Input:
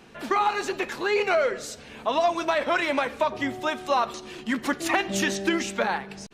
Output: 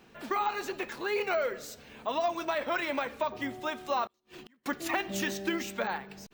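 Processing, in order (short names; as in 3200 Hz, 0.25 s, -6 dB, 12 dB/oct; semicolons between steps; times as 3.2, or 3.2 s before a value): 4.06–4.66 flipped gate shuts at -28 dBFS, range -33 dB; careless resampling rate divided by 2×, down none, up hold; gain -7 dB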